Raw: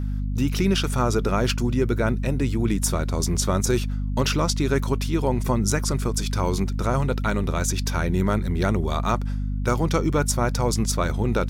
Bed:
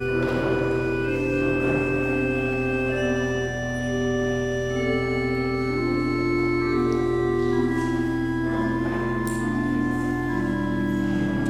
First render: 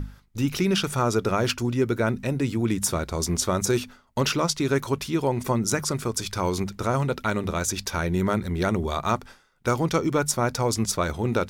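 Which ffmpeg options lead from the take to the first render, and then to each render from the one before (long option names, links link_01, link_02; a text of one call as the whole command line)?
ffmpeg -i in.wav -af "bandreject=frequency=50:width_type=h:width=6,bandreject=frequency=100:width_type=h:width=6,bandreject=frequency=150:width_type=h:width=6,bandreject=frequency=200:width_type=h:width=6,bandreject=frequency=250:width_type=h:width=6" out.wav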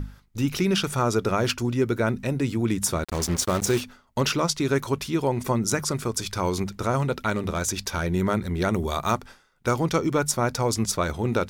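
ffmpeg -i in.wav -filter_complex "[0:a]asettb=1/sr,asplit=3[link_01][link_02][link_03];[link_01]atrim=end=3.044[link_04];[link_02]atrim=start=3.04:end=3.81,asetpts=PTS-STARTPTS,afade=type=in:duration=0.004:curve=qsin,afade=type=out:start_time=0.766:duration=0.004:curve=qsin,acrusher=bits=4:mix=0:aa=0.5[link_05];[link_03]atrim=start=3.806[link_06];[link_04][link_05]acrossfade=duration=0.004:curve1=hsin:curve2=qsin[link_07];[link_07][link_06]acrossfade=duration=0.004:curve1=qsin:curve2=hsin,asettb=1/sr,asplit=3[link_08][link_09][link_10];[link_08]atrim=end=7.354[link_11];[link_09]atrim=start=7.35:end=8.13,asetpts=PTS-STARTPTS,afade=type=in:duration=0.004:curve=qsin,afade=type=out:start_time=0.776:duration=0.004:curve=qsin,aeval=exprs='clip(val(0),-1,0.126)':channel_layout=same[link_12];[link_10]atrim=start=8.126[link_13];[link_11][link_12]acrossfade=duration=0.004:curve1=hsin:curve2=qsin[link_14];[link_14][link_13]acrossfade=duration=0.004:curve1=qsin:curve2=hsin,asettb=1/sr,asplit=3[link_15][link_16][link_17];[link_15]atrim=end=8.734[link_18];[link_16]atrim=start=8.73:end=9.16,asetpts=PTS-STARTPTS,afade=type=in:duration=0.004:curve=qsin,afade=type=out:start_time=0.426:duration=0.004:curve=qsin,highshelf=frequency=8700:gain=11.5[link_19];[link_17]atrim=start=9.156[link_20];[link_18][link_19]acrossfade=duration=0.004:curve1=hsin:curve2=qsin[link_21];[link_21][link_20]acrossfade=duration=0.004:curve1=qsin:curve2=hsin" out.wav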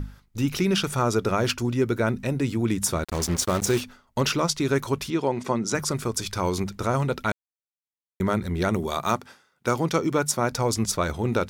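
ffmpeg -i in.wav -filter_complex "[0:a]asettb=1/sr,asplit=3[link_01][link_02][link_03];[link_01]atrim=end=5.104[link_04];[link_02]atrim=start=5.1:end=5.75,asetpts=PTS-STARTPTS,afade=type=in:duration=0.004:curve=qsin,afade=type=out:start_time=0.646:duration=0.004:curve=qsin,highpass=170,lowpass=6400[link_05];[link_03]atrim=start=5.746[link_06];[link_04][link_05]acrossfade=duration=0.004:curve1=hsin:curve2=qsin[link_07];[link_07][link_06]acrossfade=duration=0.004:curve1=qsin:curve2=hsin,asettb=1/sr,asplit=3[link_08][link_09][link_10];[link_08]atrim=end=8.784[link_11];[link_09]atrim=start=8.78:end=10.52,asetpts=PTS-STARTPTS,afade=type=in:duration=0.004:curve=qsin,afade=type=out:start_time=1.736:duration=0.004:curve=qsin,highpass=120[link_12];[link_10]atrim=start=10.516[link_13];[link_11][link_12]acrossfade=duration=0.004:curve1=hsin:curve2=qsin[link_14];[link_14][link_13]acrossfade=duration=0.004:curve1=qsin:curve2=hsin,asplit=3[link_15][link_16][link_17];[link_15]atrim=end=7.32,asetpts=PTS-STARTPTS,afade=type=out:start_time=7.316:duration=0.004:curve=hsin[link_18];[link_16]atrim=start=7.32:end=8.2,asetpts=PTS-STARTPTS,volume=0[link_19];[link_17]atrim=start=8.2,asetpts=PTS-STARTPTS,afade=type=in:duration=0.004:curve=hsin[link_20];[link_18][link_19][link_20]concat=n=3:v=0:a=1" out.wav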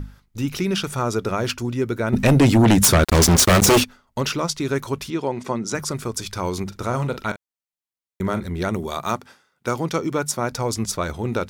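ffmpeg -i in.wav -filter_complex "[0:a]asplit=3[link_01][link_02][link_03];[link_01]afade=type=out:start_time=2.12:duration=0.02[link_04];[link_02]aeval=exprs='0.335*sin(PI/2*3.55*val(0)/0.335)':channel_layout=same,afade=type=in:start_time=2.12:duration=0.02,afade=type=out:start_time=3.83:duration=0.02[link_05];[link_03]afade=type=in:start_time=3.83:duration=0.02[link_06];[link_04][link_05][link_06]amix=inputs=3:normalize=0,asettb=1/sr,asplit=3[link_07][link_08][link_09];[link_07]atrim=end=6.634[link_10];[link_08]atrim=start=6.63:end=8.49,asetpts=PTS-STARTPTS,afade=type=in:duration=0.004:curve=qsin,afade=type=out:start_time=1.856:duration=0.004:curve=qsin,asplit=2[link_11][link_12];[link_12]adelay=42,volume=-12dB[link_13];[link_11][link_13]amix=inputs=2:normalize=0,atrim=end_sample=82026[link_14];[link_09]atrim=start=8.486[link_15];[link_10][link_14]acrossfade=duration=0.004:curve1=hsin:curve2=qsin[link_16];[link_16][link_15]acrossfade=duration=0.004:curve1=qsin:curve2=hsin" out.wav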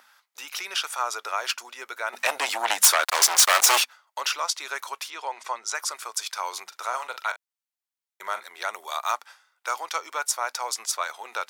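ffmpeg -i in.wav -af "highpass=frequency=770:width=0.5412,highpass=frequency=770:width=1.3066" out.wav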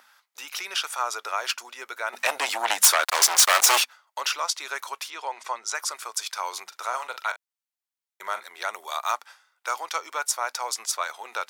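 ffmpeg -i in.wav -af anull out.wav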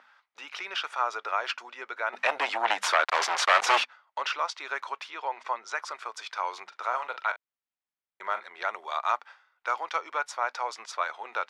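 ffmpeg -i in.wav -af "lowpass=2700" out.wav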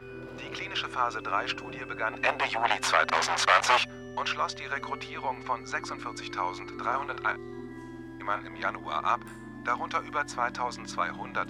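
ffmpeg -i in.wav -i bed.wav -filter_complex "[1:a]volume=-19dB[link_01];[0:a][link_01]amix=inputs=2:normalize=0" out.wav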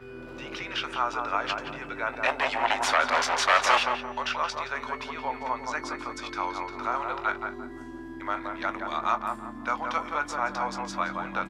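ffmpeg -i in.wav -filter_complex "[0:a]asplit=2[link_01][link_02];[link_02]adelay=20,volume=-12dB[link_03];[link_01][link_03]amix=inputs=2:normalize=0,asplit=2[link_04][link_05];[link_05]adelay=173,lowpass=frequency=1300:poles=1,volume=-3dB,asplit=2[link_06][link_07];[link_07]adelay=173,lowpass=frequency=1300:poles=1,volume=0.39,asplit=2[link_08][link_09];[link_09]adelay=173,lowpass=frequency=1300:poles=1,volume=0.39,asplit=2[link_10][link_11];[link_11]adelay=173,lowpass=frequency=1300:poles=1,volume=0.39,asplit=2[link_12][link_13];[link_13]adelay=173,lowpass=frequency=1300:poles=1,volume=0.39[link_14];[link_04][link_06][link_08][link_10][link_12][link_14]amix=inputs=6:normalize=0" out.wav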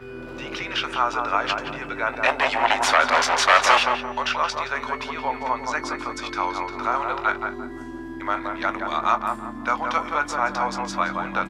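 ffmpeg -i in.wav -af "volume=5.5dB,alimiter=limit=-2dB:level=0:latency=1" out.wav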